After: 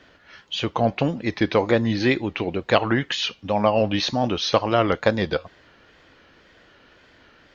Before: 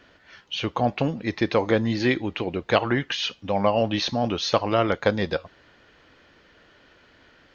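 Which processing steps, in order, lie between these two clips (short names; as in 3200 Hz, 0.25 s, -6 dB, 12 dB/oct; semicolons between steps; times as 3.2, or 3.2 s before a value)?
wow and flutter 86 cents; gain +2 dB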